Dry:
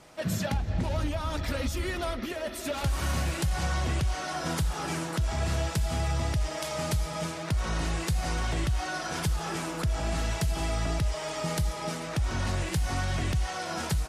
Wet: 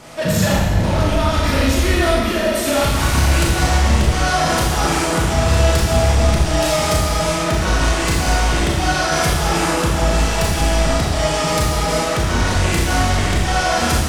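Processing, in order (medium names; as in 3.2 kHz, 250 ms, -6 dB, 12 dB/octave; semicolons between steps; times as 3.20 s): in parallel at -2.5 dB: sine folder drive 8 dB, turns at -18 dBFS; on the sum: Schroeder reverb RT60 1.2 s, combs from 26 ms, DRR -4 dB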